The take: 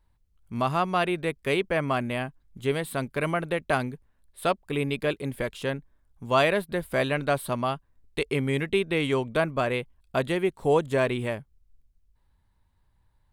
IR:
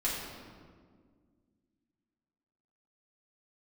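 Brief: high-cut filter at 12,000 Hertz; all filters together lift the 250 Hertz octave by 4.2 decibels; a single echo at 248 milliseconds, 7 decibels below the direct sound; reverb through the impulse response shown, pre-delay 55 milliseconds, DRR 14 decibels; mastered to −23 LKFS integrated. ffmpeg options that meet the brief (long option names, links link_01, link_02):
-filter_complex "[0:a]lowpass=12000,equalizer=frequency=250:width_type=o:gain=5.5,aecho=1:1:248:0.447,asplit=2[link_01][link_02];[1:a]atrim=start_sample=2205,adelay=55[link_03];[link_02][link_03]afir=irnorm=-1:irlink=0,volume=-20.5dB[link_04];[link_01][link_04]amix=inputs=2:normalize=0,volume=2dB"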